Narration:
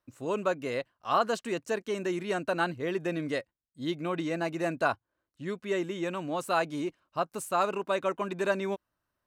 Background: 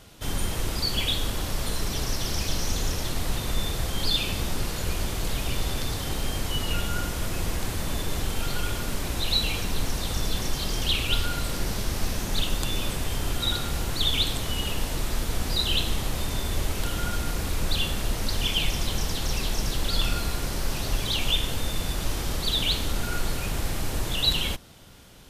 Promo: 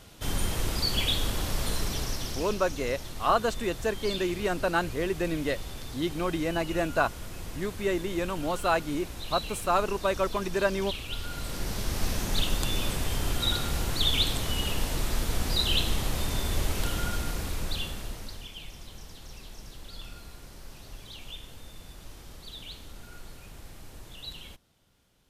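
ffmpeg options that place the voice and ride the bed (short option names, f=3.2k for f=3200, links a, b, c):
-filter_complex "[0:a]adelay=2150,volume=2dB[a];[1:a]volume=9dB,afade=t=out:st=1.74:d=0.85:silence=0.316228,afade=t=in:st=11.14:d=0.97:silence=0.316228,afade=t=out:st=16.84:d=1.64:silence=0.141254[b];[a][b]amix=inputs=2:normalize=0"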